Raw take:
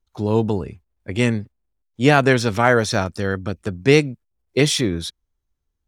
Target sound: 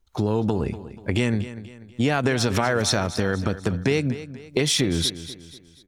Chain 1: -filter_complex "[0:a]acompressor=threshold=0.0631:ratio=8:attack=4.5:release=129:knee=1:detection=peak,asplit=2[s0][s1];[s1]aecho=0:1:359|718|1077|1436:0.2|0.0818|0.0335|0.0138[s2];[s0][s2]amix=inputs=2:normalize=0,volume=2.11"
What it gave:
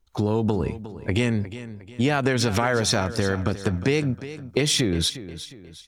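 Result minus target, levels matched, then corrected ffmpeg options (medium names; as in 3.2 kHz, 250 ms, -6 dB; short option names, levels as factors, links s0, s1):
echo 116 ms late
-filter_complex "[0:a]acompressor=threshold=0.0631:ratio=8:attack=4.5:release=129:knee=1:detection=peak,asplit=2[s0][s1];[s1]aecho=0:1:243|486|729|972:0.2|0.0818|0.0335|0.0138[s2];[s0][s2]amix=inputs=2:normalize=0,volume=2.11"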